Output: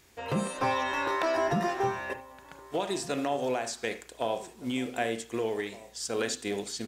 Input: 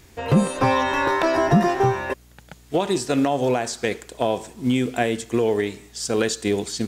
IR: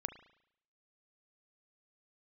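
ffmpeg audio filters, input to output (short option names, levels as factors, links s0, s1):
-filter_complex "[0:a]lowshelf=f=290:g=-10,asplit=2[s0][s1];[s1]adelay=1516,volume=0.126,highshelf=f=4000:g=-34.1[s2];[s0][s2]amix=inputs=2:normalize=0[s3];[1:a]atrim=start_sample=2205,atrim=end_sample=4410[s4];[s3][s4]afir=irnorm=-1:irlink=0,volume=0.562"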